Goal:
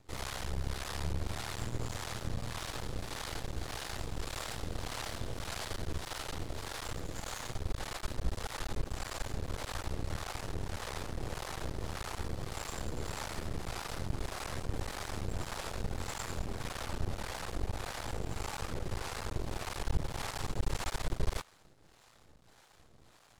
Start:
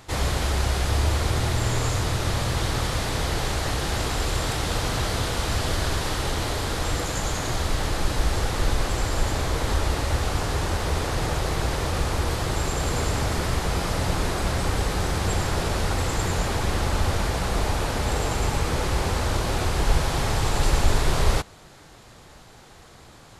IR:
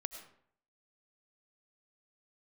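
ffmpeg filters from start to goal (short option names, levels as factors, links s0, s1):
-filter_complex "[0:a]aeval=exprs='max(val(0),0)':c=same,acrossover=split=540[s0][s1];[s0]aeval=exprs='val(0)*(1-0.7/2+0.7/2*cos(2*PI*1.7*n/s))':c=same[s2];[s1]aeval=exprs='val(0)*(1-0.7/2-0.7/2*cos(2*PI*1.7*n/s))':c=same[s3];[s2][s3]amix=inputs=2:normalize=0,volume=0.447"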